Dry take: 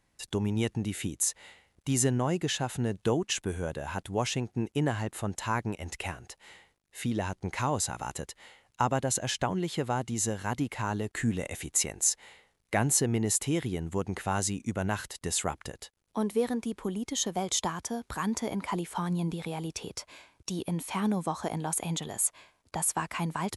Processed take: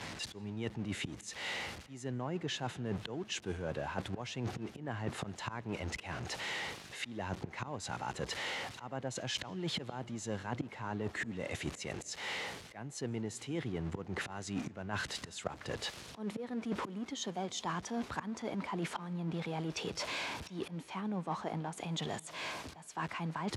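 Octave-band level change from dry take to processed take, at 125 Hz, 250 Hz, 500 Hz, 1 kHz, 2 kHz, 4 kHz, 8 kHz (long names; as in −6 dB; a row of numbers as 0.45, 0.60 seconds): −8.5, −8.0, −8.0, −7.5, −2.5, −3.5, −16.0 decibels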